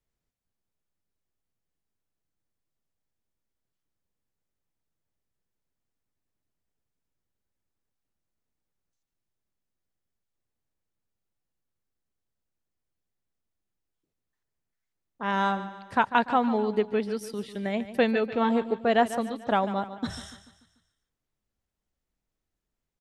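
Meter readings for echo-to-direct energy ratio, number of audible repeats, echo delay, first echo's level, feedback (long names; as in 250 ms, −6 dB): −12.5 dB, 4, 146 ms, −13.5 dB, 48%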